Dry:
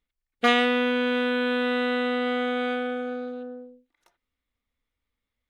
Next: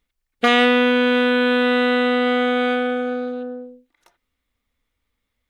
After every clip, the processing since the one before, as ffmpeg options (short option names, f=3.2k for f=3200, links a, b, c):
-af "alimiter=level_in=11.5dB:limit=-1dB:release=50:level=0:latency=1,volume=-4dB"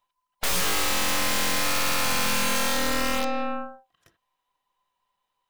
-af "afftfilt=real='real(if(between(b,1,1008),(2*floor((b-1)/48)+1)*48-b,b),0)':imag='imag(if(between(b,1,1008),(2*floor((b-1)/48)+1)*48-b,b),0)*if(between(b,1,1008),-1,1)':win_size=2048:overlap=0.75,aeval=exprs='(mod(7.94*val(0)+1,2)-1)/7.94':c=same,aeval=exprs='0.133*(cos(1*acos(clip(val(0)/0.133,-1,1)))-cos(1*PI/2))+0.0473*(cos(4*acos(clip(val(0)/0.133,-1,1)))-cos(4*PI/2))+0.0237*(cos(8*acos(clip(val(0)/0.133,-1,1)))-cos(8*PI/2))':c=same,volume=-3.5dB"